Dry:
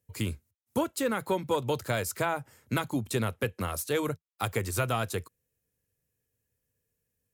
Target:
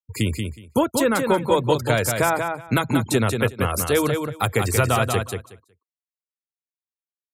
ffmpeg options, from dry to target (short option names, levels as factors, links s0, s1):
-filter_complex "[0:a]asplit=2[s0][s1];[s1]asoftclip=type=tanh:threshold=0.0631,volume=0.422[s2];[s0][s2]amix=inputs=2:normalize=0,afftfilt=real='re*gte(hypot(re,im),0.00891)':imag='im*gte(hypot(re,im),0.00891)':win_size=1024:overlap=0.75,aecho=1:1:184|368|552:0.531|0.0849|0.0136,volume=2.11"